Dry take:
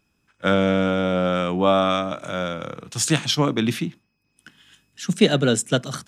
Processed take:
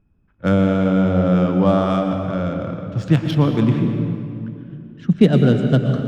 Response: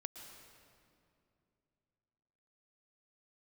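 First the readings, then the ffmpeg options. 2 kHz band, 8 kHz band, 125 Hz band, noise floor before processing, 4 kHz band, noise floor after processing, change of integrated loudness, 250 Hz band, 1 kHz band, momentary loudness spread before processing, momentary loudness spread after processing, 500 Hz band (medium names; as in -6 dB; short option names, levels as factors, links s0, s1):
-4.0 dB, under -20 dB, +9.5 dB, -71 dBFS, -9.0 dB, -59 dBFS, +3.5 dB, +6.5 dB, -1.5 dB, 11 LU, 12 LU, +1.5 dB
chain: -filter_complex "[0:a]aemphasis=mode=reproduction:type=riaa,adynamicsmooth=sensitivity=2:basefreq=2600[s0];[1:a]atrim=start_sample=2205[s1];[s0][s1]afir=irnorm=-1:irlink=0,volume=1.26"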